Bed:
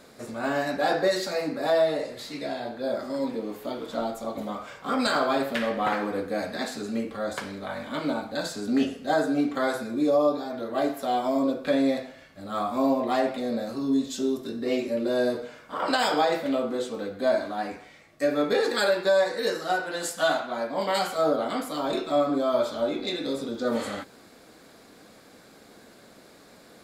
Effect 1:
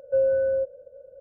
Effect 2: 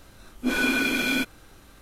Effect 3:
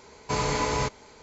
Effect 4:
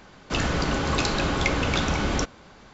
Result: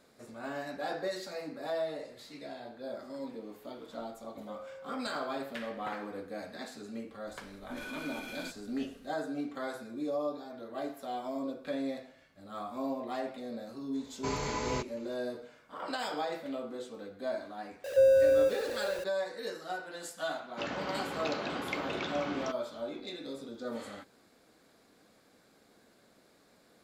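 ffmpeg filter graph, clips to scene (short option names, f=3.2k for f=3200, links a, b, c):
-filter_complex "[1:a]asplit=2[a][b];[0:a]volume=-12dB[c];[a]highpass=f=1.2k:p=1[d];[2:a]alimiter=limit=-23.5dB:level=0:latency=1:release=71[e];[b]aeval=exprs='val(0)+0.5*0.0211*sgn(val(0))':c=same[f];[4:a]highpass=210,lowpass=4.2k[g];[d]atrim=end=1.2,asetpts=PTS-STARTPTS,volume=-17.5dB,afade=t=in:d=0.004:c=hsin,afade=t=out:st=1.196:d=0.004:c=hsin,adelay=4350[h];[e]atrim=end=1.81,asetpts=PTS-STARTPTS,volume=-11.5dB,afade=t=in:d=0.004:c=hsin,afade=t=out:st=1.806:d=0.004:c=hsin,adelay=7270[i];[3:a]atrim=end=1.22,asetpts=PTS-STARTPTS,volume=-8.5dB,afade=t=in:d=0.004:c=hsin,afade=t=out:st=1.216:d=0.004:c=hsin,adelay=13940[j];[f]atrim=end=1.2,asetpts=PTS-STARTPTS,volume=-1.5dB,afade=t=in:d=0.004:c=hsin,afade=t=out:st=1.196:d=0.004:c=hsin,adelay=17840[k];[g]atrim=end=2.73,asetpts=PTS-STARTPTS,volume=-11dB,afade=t=in:d=0.004:c=hsin,afade=t=out:st=2.726:d=0.004:c=hsin,adelay=20270[l];[c][h][i][j][k][l]amix=inputs=6:normalize=0"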